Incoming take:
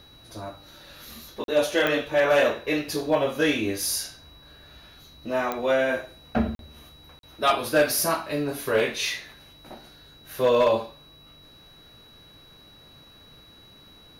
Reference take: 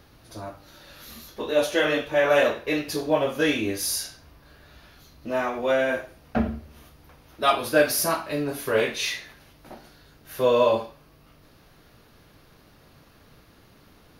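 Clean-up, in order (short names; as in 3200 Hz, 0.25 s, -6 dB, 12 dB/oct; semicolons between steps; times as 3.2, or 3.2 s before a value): clip repair -13 dBFS; de-click; notch 3900 Hz, Q 30; interpolate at 1.44/6.55/7.19, 42 ms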